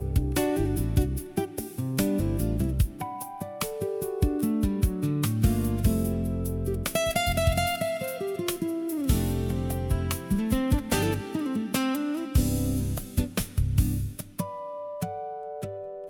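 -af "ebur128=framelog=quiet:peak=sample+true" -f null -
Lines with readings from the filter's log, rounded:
Integrated loudness:
  I:         -28.1 LUFS
  Threshold: -38.1 LUFS
Loudness range:
  LRA:         2.5 LU
  Threshold: -47.9 LUFS
  LRA low:   -29.2 LUFS
  LRA high:  -26.7 LUFS
Sample peak:
  Peak:      -10.5 dBFS
True peak:
  Peak:      -10.5 dBFS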